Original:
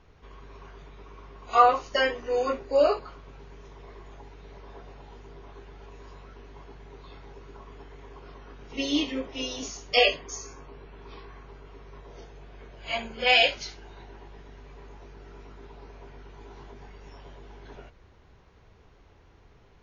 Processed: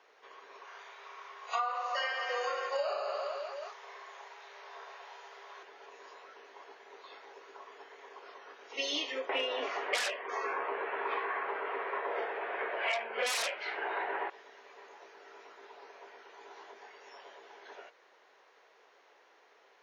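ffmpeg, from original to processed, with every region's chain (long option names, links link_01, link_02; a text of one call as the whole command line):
ffmpeg -i in.wav -filter_complex "[0:a]asettb=1/sr,asplit=3[link_01][link_02][link_03];[link_01]atrim=end=0.644[link_04];[link_02]atrim=start=0.64:end=5.63,asetpts=PTS-STARTPTS,afade=type=in:duration=0.004:curve=qsin,afade=type=out:start_time=4.986:duration=0.004:curve=qsin,highpass=680,aecho=1:1:30|67.5|114.4|173|246.2|337.8|452.2|595.3|774.1:0.794|0.631|0.501|0.398|0.316|0.251|0.2|0.158|0.126,atrim=end_sample=220059[link_05];[link_03]atrim=start=5.626[link_06];[link_04][link_05]acrossfade=duration=0.004:curve1=hsin:curve2=qsin[link_07];[link_07][link_06]acrossfade=duration=0.004:curve1=qsin:curve2=hsin,asettb=1/sr,asplit=3[link_08][link_09][link_10];[link_08]atrim=end=9.294[link_11];[link_09]atrim=start=9.29:end=14.3,asetpts=PTS-STARTPTS,afade=type=in:duration=0.004:curve=qsin,afade=type=out:start_time=5.006:duration=0.004:curve=qsin,lowpass=frequency=2400:width=0.5412,lowpass=frequency=2400:width=1.3066,equalizer=frequency=180:width_type=o:width=2:gain=-4.5,aeval=exprs='0.299*sin(PI/2*5.62*val(0)/0.299)':channel_layout=same[link_12];[link_10]atrim=start=14.296[link_13];[link_11][link_12]acrossfade=duration=0.004:curve1=hsin:curve2=qsin[link_14];[link_14][link_13]acrossfade=duration=0.004:curve1=qsin:curve2=hsin,highpass=frequency=460:width=0.5412,highpass=frequency=460:width=1.3066,equalizer=frequency=1800:width=3.9:gain=4,acompressor=threshold=-30dB:ratio=20" out.wav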